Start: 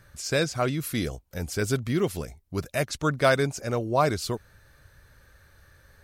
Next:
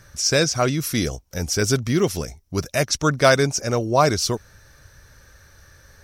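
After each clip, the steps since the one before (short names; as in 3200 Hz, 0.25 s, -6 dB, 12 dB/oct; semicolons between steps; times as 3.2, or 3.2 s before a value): bell 5700 Hz +13 dB 0.31 oct; gain +5.5 dB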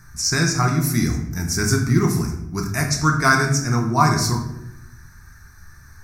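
fixed phaser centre 1300 Hz, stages 4; shoebox room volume 220 m³, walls mixed, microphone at 0.91 m; gain +2 dB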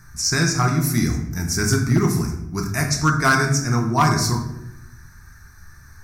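hard clip -9.5 dBFS, distortion -20 dB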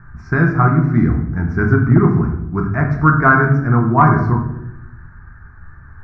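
Chebyshev low-pass 1500 Hz, order 3; gain +6.5 dB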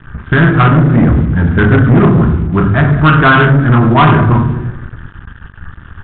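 sample leveller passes 3; downsampling 8000 Hz; gain -1 dB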